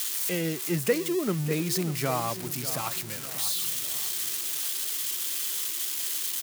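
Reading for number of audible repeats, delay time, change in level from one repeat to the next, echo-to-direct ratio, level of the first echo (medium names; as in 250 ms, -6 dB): 4, 595 ms, -7.0 dB, -12.0 dB, -13.0 dB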